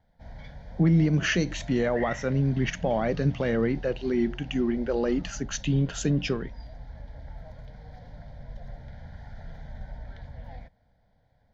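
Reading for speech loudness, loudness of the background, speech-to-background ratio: -26.5 LUFS, -44.0 LUFS, 17.5 dB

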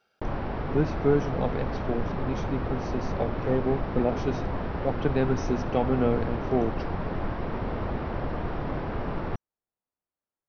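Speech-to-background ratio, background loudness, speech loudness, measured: 3.5 dB, -32.5 LUFS, -29.0 LUFS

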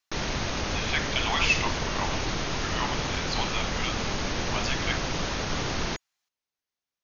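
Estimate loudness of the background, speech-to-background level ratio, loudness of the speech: -29.5 LUFS, -1.0 dB, -30.5 LUFS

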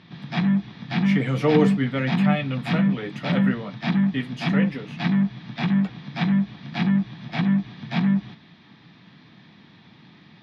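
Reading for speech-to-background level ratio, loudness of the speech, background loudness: -2.5 dB, -26.5 LUFS, -24.0 LUFS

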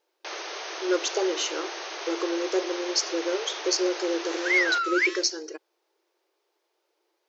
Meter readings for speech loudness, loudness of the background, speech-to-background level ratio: -26.0 LUFS, -35.0 LUFS, 9.0 dB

